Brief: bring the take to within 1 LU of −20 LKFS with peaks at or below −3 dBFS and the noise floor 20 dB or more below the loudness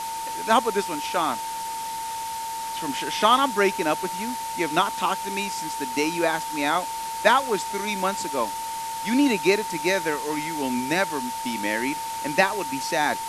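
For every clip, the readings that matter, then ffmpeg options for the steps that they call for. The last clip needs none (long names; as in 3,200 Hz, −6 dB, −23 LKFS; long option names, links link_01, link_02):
interfering tone 900 Hz; level of the tone −29 dBFS; background noise floor −31 dBFS; target noise floor −45 dBFS; integrated loudness −24.5 LKFS; sample peak −4.0 dBFS; target loudness −20.0 LKFS
→ -af "bandreject=frequency=900:width=30"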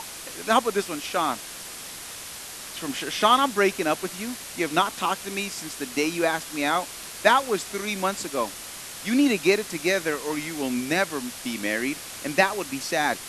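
interfering tone none found; background noise floor −39 dBFS; target noise floor −45 dBFS
→ -af "afftdn=noise_reduction=6:noise_floor=-39"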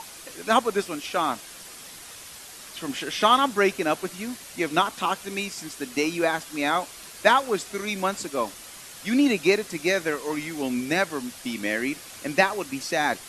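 background noise floor −43 dBFS; target noise floor −46 dBFS
→ -af "afftdn=noise_reduction=6:noise_floor=-43"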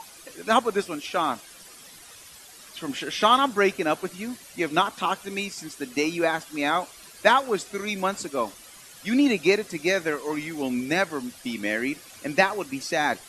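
background noise floor −47 dBFS; integrated loudness −25.5 LKFS; sample peak −4.5 dBFS; target loudness −20.0 LKFS
→ -af "volume=5.5dB,alimiter=limit=-3dB:level=0:latency=1"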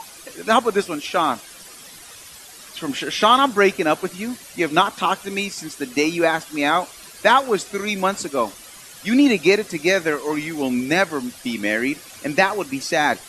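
integrated loudness −20.5 LKFS; sample peak −3.0 dBFS; background noise floor −42 dBFS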